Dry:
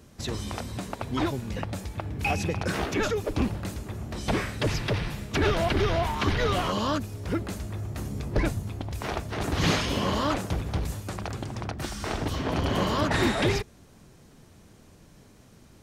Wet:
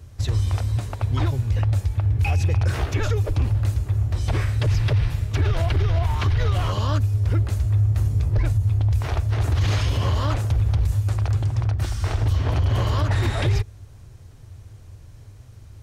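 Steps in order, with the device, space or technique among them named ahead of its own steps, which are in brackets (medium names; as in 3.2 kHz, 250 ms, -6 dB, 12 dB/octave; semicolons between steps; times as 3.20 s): car stereo with a boomy subwoofer (resonant low shelf 140 Hz +10.5 dB, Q 3; peak limiter -13 dBFS, peak gain reduction 11 dB)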